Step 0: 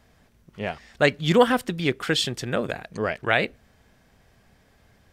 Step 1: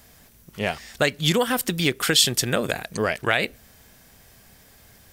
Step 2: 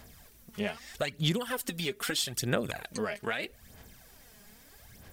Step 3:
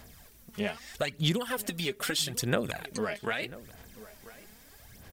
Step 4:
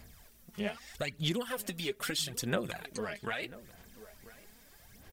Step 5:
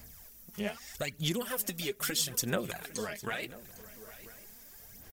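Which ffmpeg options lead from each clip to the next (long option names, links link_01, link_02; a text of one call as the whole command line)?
ffmpeg -i in.wav -af "acompressor=threshold=-22dB:ratio=6,aemphasis=mode=production:type=75fm,volume=4.5dB" out.wav
ffmpeg -i in.wav -af "acompressor=threshold=-32dB:ratio=2,aphaser=in_gain=1:out_gain=1:delay=4.9:decay=0.58:speed=0.79:type=sinusoidal,volume=-5dB" out.wav
ffmpeg -i in.wav -filter_complex "[0:a]asplit=2[link_01][link_02];[link_02]adelay=991.3,volume=-17dB,highshelf=frequency=4000:gain=-22.3[link_03];[link_01][link_03]amix=inputs=2:normalize=0,volume=1dB" out.wav
ffmpeg -i in.wav -af "flanger=delay=0.4:depth=5.4:regen=51:speed=0.94:shape=sinusoidal" out.wav
ffmpeg -i in.wav -af "aexciter=amount=2.4:drive=4.2:freq=5400,aecho=1:1:804:0.126" out.wav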